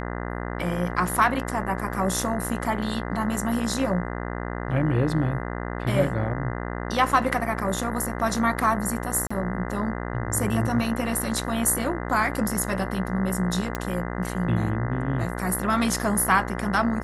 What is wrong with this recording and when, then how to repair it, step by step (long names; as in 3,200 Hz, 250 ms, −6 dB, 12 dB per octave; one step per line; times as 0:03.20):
mains buzz 60 Hz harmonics 34 −31 dBFS
0:09.27–0:09.30: drop-out 35 ms
0:13.75: click −12 dBFS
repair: click removal
hum removal 60 Hz, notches 34
repair the gap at 0:09.27, 35 ms